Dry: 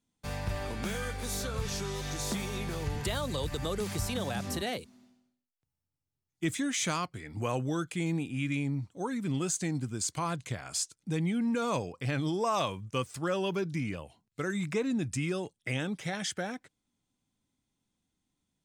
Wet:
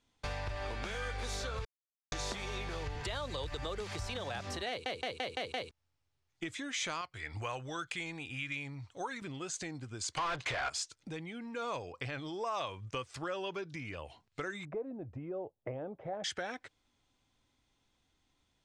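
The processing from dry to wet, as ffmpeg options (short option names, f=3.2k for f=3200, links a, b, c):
-filter_complex "[0:a]asettb=1/sr,asplit=3[a][b][c];[a]atrim=end=7.014[d];[b]atrim=start=7.01:end=9.22,asetpts=PTS-STARTPTS,afade=t=in:d=0.004:c=qsin,afade=t=out:st=2.206:d=0.004:c=qsin,equalizer=f=280:t=o:w=2.5:g=-9.5[e];[c]atrim=start=9.216[f];[d][e]acrossfade=d=0.004:c1=hsin:c2=qsin[g];[g][f]acrossfade=d=0.004:c1=qsin:c2=hsin,asplit=3[h][i][j];[h]afade=t=out:st=10.17:d=0.02[k];[i]asplit=2[l][m];[m]highpass=f=720:p=1,volume=31dB,asoftclip=type=tanh:threshold=-20.5dB[n];[l][n]amix=inputs=2:normalize=0,lowpass=f=2.7k:p=1,volume=-6dB,afade=t=in:st=10.17:d=0.02,afade=t=out:st=10.68:d=0.02[o];[j]afade=t=in:st=10.68:d=0.02[p];[k][o][p]amix=inputs=3:normalize=0,asettb=1/sr,asplit=3[q][r][s];[q]atrim=end=14.654[t];[r]atrim=start=14.65:end=16.24,asetpts=PTS-STARTPTS,afade=t=in:d=0.004:c=qsin,afade=t=out:st=1.586:d=0.004:c=qsin,lowpass=f=640:t=q:w=2.3[u];[s]atrim=start=16.236[v];[t][u]acrossfade=d=0.004:c1=hsin:c2=qsin[w];[w][v]acrossfade=d=0.004:c1=qsin:c2=hsin,asplit=9[x][y][z][aa][ab][ac][ad][ae][af];[x]atrim=end=1.65,asetpts=PTS-STARTPTS,afade=t=out:st=1.646:d=0.004:c=hsin[ag];[y]atrim=start=1.65:end=2.12,asetpts=PTS-STARTPTS,volume=0[ah];[z]atrim=start=2.12:end=4.862,asetpts=PTS-STARTPTS,afade=t=in:d=0.004:c=hsin[ai];[aa]atrim=start=4.688:end=4.862[aj];[ab]atrim=start=4.688:end=4.862[ak];[ac]atrim=start=4.688:end=4.862[al];[ad]atrim=start=4.688:end=4.862[am];[ae]atrim=start=4.688:end=4.862[an];[af]atrim=start=5.708[ao];[ag][ah][ai]concat=n=3:v=0:a=1[ap];[ap][aj]acrossfade=d=0.004:c1=hsin:c2=hsin[aq];[aq][ak]acrossfade=d=0.004:c1=hsin:c2=hsin[ar];[ar][al]acrossfade=d=0.004:c1=hsin:c2=hsin[as];[as][am]acrossfade=d=0.004:c1=hsin:c2=hsin[at];[at][an]acrossfade=d=0.004:c1=hsin:c2=hsin[au];[au][ao]acrossfade=d=0.004:c1=hsin:c2=hsin,lowpass=5k,acompressor=threshold=-44dB:ratio=6,equalizer=f=190:w=0.99:g=-13,volume=10.5dB"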